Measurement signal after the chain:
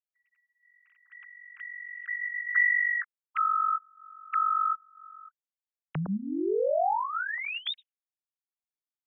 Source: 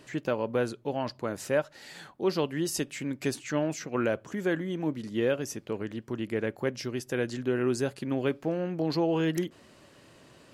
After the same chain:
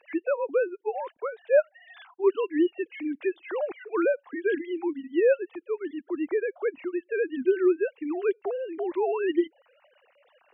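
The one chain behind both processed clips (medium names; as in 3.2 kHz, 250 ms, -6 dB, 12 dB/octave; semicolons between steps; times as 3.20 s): formants replaced by sine waves; reverb removal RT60 0.55 s; trim +3.5 dB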